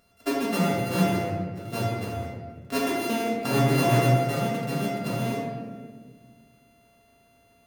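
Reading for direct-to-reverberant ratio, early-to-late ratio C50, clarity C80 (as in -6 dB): -6.5 dB, 0.5 dB, 2.5 dB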